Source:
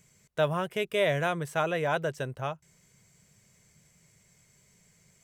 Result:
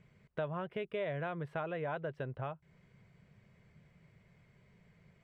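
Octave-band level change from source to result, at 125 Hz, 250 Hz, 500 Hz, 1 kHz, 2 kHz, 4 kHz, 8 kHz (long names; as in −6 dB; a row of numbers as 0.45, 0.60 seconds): −7.0 dB, −7.5 dB, −9.5 dB, −10.0 dB, −12.0 dB, −17.0 dB, below −30 dB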